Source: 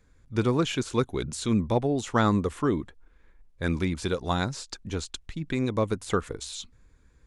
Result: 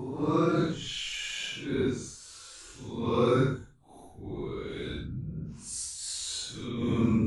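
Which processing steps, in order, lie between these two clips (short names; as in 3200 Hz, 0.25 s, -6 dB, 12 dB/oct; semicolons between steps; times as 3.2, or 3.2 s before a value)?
level quantiser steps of 12 dB; Paulstretch 7.2×, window 0.05 s, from 0.54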